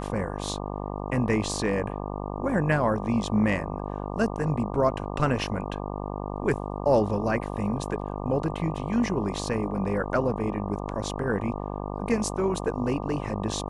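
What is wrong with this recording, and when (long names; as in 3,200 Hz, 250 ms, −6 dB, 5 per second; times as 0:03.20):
mains buzz 50 Hz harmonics 24 −33 dBFS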